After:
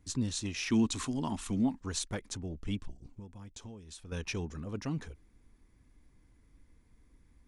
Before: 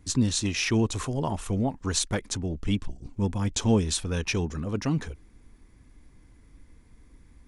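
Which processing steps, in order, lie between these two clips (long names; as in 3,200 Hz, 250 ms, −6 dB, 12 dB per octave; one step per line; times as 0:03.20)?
0:00.70–0:01.80: octave-band graphic EQ 125/250/500/1,000/2,000/4,000/8,000 Hz −4/+12/−8/+3/+4/+7/+6 dB
0:02.99–0:04.12: downward compressor 16 to 1, threshold −35 dBFS, peak gain reduction 19 dB
level −9 dB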